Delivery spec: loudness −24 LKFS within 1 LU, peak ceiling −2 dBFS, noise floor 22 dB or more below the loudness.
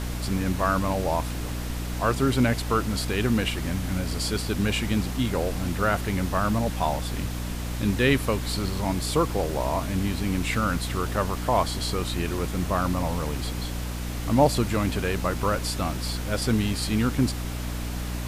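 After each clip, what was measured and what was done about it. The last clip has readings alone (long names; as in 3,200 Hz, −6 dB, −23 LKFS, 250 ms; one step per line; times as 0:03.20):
mains hum 60 Hz; hum harmonics up to 300 Hz; level of the hum −29 dBFS; background noise floor −31 dBFS; target noise floor −48 dBFS; integrated loudness −26.0 LKFS; sample peak −8.0 dBFS; target loudness −24.0 LKFS
→ hum removal 60 Hz, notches 5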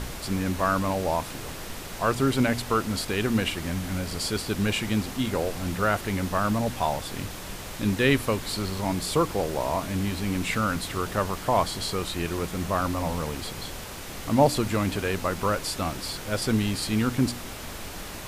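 mains hum none found; background noise floor −38 dBFS; target noise floor −49 dBFS
→ noise reduction from a noise print 11 dB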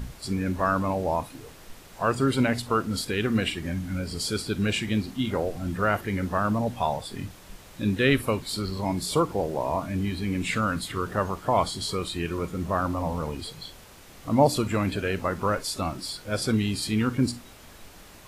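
background noise floor −48 dBFS; target noise floor −49 dBFS
→ noise reduction from a noise print 6 dB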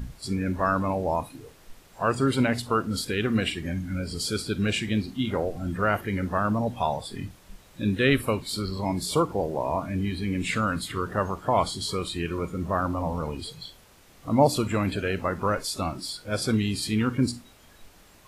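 background noise floor −54 dBFS; integrated loudness −27.0 LKFS; sample peak −8.0 dBFS; target loudness −24.0 LKFS
→ level +3 dB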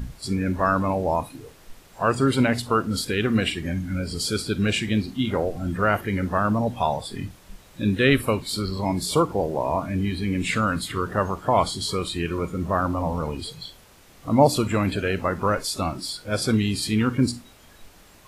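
integrated loudness −24.0 LKFS; sample peak −5.0 dBFS; background noise floor −51 dBFS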